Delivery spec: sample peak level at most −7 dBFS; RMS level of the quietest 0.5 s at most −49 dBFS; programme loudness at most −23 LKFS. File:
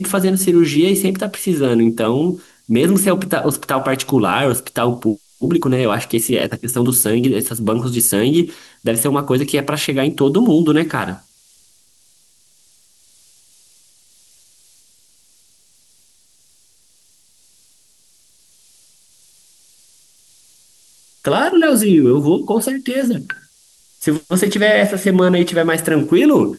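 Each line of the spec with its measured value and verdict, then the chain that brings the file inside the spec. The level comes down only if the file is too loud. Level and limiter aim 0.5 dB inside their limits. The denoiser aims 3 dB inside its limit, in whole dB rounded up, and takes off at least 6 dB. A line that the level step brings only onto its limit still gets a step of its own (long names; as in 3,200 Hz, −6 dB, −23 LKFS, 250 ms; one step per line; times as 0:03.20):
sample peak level −3.5 dBFS: out of spec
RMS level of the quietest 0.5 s −54 dBFS: in spec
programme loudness −16.0 LKFS: out of spec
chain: level −7.5 dB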